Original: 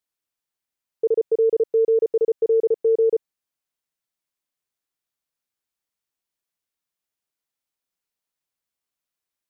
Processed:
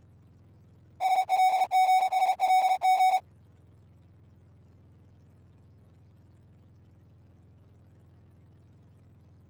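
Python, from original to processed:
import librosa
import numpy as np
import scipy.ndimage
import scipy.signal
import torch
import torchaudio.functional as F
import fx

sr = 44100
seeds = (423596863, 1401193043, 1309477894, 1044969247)

y = fx.octave_mirror(x, sr, pivot_hz=580.0)
y = fx.power_curve(y, sr, exponent=0.5)
y = y * librosa.db_to_amplitude(-4.5)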